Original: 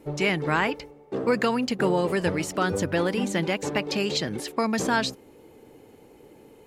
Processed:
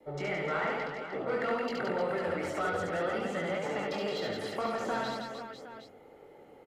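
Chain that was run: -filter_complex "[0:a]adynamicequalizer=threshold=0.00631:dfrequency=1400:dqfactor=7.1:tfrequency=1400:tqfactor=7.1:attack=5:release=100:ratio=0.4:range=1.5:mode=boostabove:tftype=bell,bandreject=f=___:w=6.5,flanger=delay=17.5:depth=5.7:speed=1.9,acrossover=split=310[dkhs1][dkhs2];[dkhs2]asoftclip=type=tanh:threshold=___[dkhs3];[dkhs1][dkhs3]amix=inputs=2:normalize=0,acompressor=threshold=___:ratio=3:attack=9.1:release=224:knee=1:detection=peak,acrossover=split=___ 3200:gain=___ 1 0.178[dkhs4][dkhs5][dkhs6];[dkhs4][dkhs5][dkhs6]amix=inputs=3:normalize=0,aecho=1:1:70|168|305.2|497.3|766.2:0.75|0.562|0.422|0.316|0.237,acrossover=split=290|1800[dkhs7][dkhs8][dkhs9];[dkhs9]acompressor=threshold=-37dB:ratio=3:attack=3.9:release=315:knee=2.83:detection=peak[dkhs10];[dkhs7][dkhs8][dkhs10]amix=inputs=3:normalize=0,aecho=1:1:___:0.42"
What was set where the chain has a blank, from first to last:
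2600, -26dB, -30dB, 280, 0.251, 1.5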